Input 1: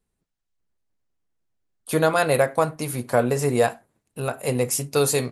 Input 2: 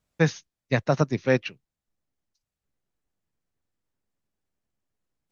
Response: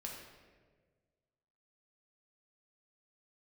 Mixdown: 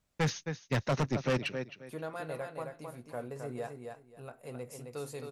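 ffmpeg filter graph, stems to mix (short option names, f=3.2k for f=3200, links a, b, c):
-filter_complex "[0:a]highshelf=f=3.7k:g=-8,volume=-19.5dB,asplit=2[a][b];[b]volume=-5.5dB[c];[1:a]volume=0dB,asplit=2[d][e];[e]volume=-15dB[f];[c][f]amix=inputs=2:normalize=0,aecho=0:1:265|530|795:1|0.21|0.0441[g];[a][d][g]amix=inputs=3:normalize=0,asoftclip=type=tanh:threshold=-25dB"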